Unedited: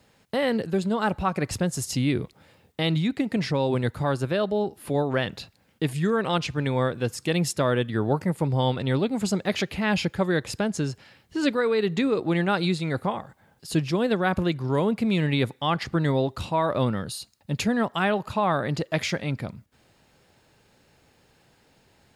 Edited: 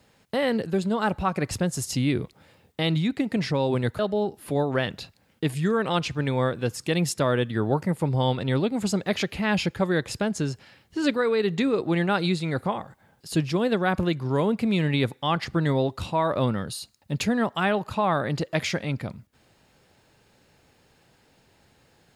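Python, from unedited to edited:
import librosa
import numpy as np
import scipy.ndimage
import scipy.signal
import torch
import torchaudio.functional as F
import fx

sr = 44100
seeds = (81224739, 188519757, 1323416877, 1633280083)

y = fx.edit(x, sr, fx.cut(start_s=3.99, length_s=0.39), tone=tone)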